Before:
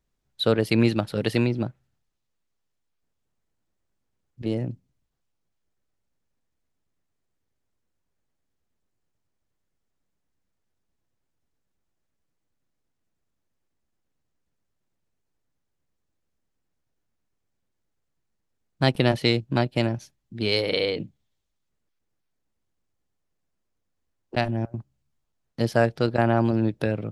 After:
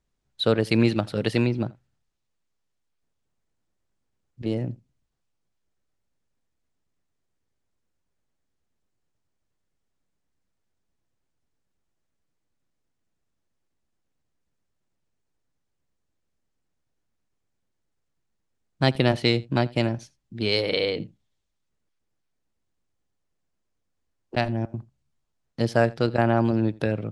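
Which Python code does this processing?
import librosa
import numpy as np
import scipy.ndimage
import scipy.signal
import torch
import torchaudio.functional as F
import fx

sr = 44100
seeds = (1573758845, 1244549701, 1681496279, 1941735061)

p1 = scipy.signal.sosfilt(scipy.signal.butter(4, 10000.0, 'lowpass', fs=sr, output='sos'), x)
y = p1 + fx.echo_single(p1, sr, ms=83, db=-23.0, dry=0)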